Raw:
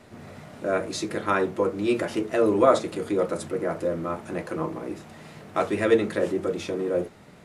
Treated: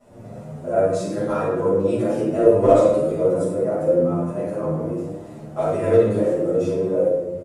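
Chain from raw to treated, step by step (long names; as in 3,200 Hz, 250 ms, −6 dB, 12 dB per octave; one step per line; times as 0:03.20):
hard clipping −12.5 dBFS, distortion −19 dB
octave-band graphic EQ 125/500/2,000/4,000/8,000 Hz +6/+9/−7/−7/+4 dB
convolution reverb RT60 1.0 s, pre-delay 5 ms, DRR −11 dB
barber-pole flanger 8.6 ms +1.2 Hz
level −11 dB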